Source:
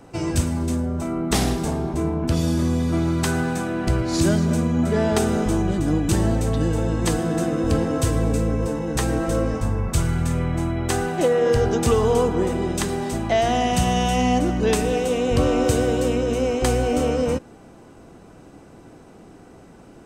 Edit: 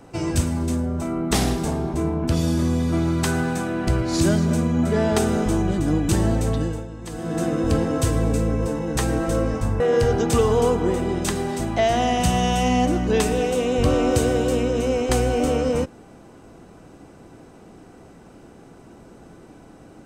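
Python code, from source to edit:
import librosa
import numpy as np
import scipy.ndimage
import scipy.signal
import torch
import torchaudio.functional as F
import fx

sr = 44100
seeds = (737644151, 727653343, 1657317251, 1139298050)

y = fx.edit(x, sr, fx.fade_down_up(start_s=6.51, length_s=0.95, db=-13.5, fade_s=0.36),
    fx.cut(start_s=9.8, length_s=1.53), tone=tone)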